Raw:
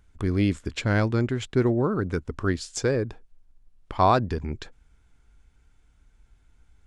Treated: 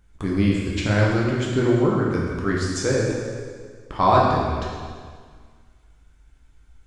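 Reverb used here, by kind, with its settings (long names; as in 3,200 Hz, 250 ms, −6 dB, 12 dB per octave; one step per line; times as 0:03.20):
dense smooth reverb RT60 1.8 s, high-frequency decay 0.95×, DRR −4 dB
level −1 dB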